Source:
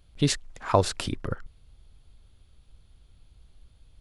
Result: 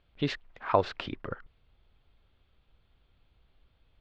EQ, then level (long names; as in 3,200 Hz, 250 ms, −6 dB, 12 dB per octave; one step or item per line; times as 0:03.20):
Chebyshev low-pass filter 2,900 Hz, order 2
high-frequency loss of the air 130 metres
low-shelf EQ 220 Hz −11.5 dB
0.0 dB